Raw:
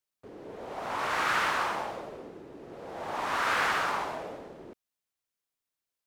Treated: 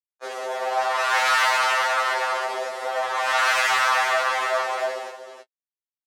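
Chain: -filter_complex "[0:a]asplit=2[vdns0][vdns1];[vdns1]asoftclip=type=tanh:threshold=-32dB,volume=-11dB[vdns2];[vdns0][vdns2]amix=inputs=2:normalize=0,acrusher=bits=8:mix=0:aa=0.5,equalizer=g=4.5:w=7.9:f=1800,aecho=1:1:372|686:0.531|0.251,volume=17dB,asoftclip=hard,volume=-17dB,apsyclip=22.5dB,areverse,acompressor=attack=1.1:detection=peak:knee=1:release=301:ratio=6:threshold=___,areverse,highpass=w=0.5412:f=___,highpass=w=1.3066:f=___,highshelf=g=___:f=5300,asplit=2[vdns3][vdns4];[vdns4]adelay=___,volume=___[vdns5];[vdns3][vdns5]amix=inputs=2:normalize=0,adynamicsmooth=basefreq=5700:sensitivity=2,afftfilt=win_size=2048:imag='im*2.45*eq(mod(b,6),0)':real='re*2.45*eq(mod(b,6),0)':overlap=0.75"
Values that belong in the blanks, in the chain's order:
-16dB, 550, 550, 9, 17, -13dB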